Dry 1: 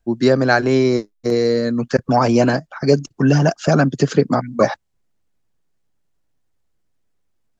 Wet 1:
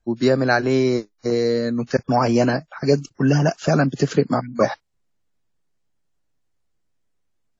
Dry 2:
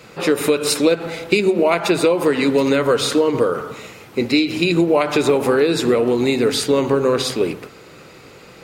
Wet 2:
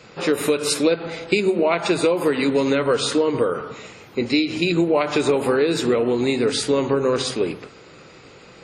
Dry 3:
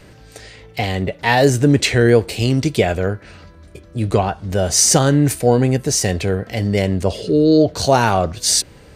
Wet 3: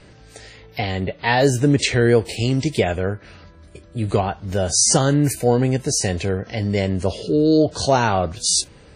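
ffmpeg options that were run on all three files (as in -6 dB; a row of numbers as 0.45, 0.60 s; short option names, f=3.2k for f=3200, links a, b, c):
-af "volume=-3dB" -ar 48000 -c:a wmav2 -b:a 32k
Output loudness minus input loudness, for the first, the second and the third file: -3.0, -3.0, -3.0 LU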